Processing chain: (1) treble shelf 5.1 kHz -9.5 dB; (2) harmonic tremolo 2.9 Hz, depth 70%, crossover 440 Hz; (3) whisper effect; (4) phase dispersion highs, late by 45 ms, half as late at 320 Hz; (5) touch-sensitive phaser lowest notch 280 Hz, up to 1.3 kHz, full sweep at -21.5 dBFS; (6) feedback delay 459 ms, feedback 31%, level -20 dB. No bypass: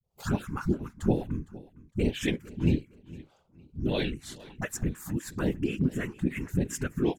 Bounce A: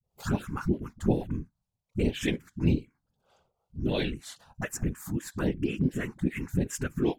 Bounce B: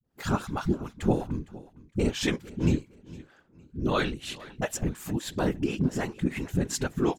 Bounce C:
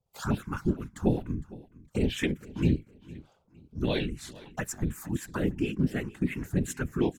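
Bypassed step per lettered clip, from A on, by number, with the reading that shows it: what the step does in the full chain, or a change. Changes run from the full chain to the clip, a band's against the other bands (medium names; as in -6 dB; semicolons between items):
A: 6, momentary loudness spread change -7 LU; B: 5, 1 kHz band +5.0 dB; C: 4, crest factor change -1.5 dB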